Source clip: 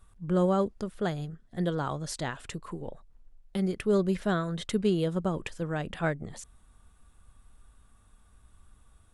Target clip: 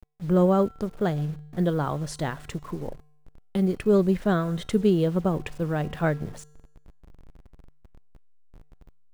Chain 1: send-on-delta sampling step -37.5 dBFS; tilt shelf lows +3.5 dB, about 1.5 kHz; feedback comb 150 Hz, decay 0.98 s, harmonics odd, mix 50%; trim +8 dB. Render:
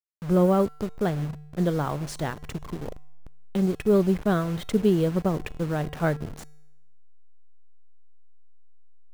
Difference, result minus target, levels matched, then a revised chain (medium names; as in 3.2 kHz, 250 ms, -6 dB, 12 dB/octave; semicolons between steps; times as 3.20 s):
send-on-delta sampling: distortion +9 dB
send-on-delta sampling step -47 dBFS; tilt shelf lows +3.5 dB, about 1.5 kHz; feedback comb 150 Hz, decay 0.98 s, harmonics odd, mix 50%; trim +8 dB